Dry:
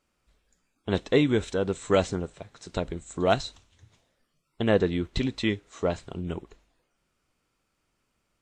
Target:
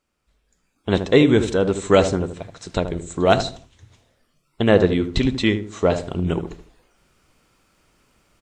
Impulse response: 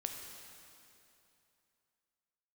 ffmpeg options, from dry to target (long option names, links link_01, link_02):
-filter_complex "[0:a]asplit=2[link_01][link_02];[link_02]adelay=77,lowpass=frequency=950:poles=1,volume=-8dB,asplit=2[link_03][link_04];[link_04]adelay=77,lowpass=frequency=950:poles=1,volume=0.38,asplit=2[link_05][link_06];[link_06]adelay=77,lowpass=frequency=950:poles=1,volume=0.38,asplit=2[link_07][link_08];[link_08]adelay=77,lowpass=frequency=950:poles=1,volume=0.38[link_09];[link_01][link_03][link_05][link_07][link_09]amix=inputs=5:normalize=0,dynaudnorm=framelen=430:gausssize=3:maxgain=15dB,volume=-1dB"